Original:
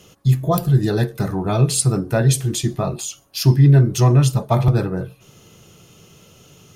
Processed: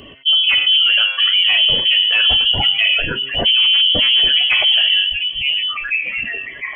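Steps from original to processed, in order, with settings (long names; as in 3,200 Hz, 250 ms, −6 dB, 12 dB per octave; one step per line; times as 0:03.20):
spectral dynamics exaggerated over time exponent 1.5
echo through a band-pass that steps 703 ms, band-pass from 240 Hz, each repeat 1.4 octaves, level −8 dB
pitch vibrato 9.2 Hz 5.7 cents
in parallel at −11.5 dB: sine wavefolder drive 10 dB, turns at −4.5 dBFS
on the sum: voice inversion scrambler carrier 3,200 Hz
noise reduction from a noise print of the clip's start 13 dB
hum removal 133.2 Hz, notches 38
transient designer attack −7 dB, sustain +2 dB
brickwall limiter −15 dBFS, peak gain reduction 10 dB
envelope flattener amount 50%
level +7 dB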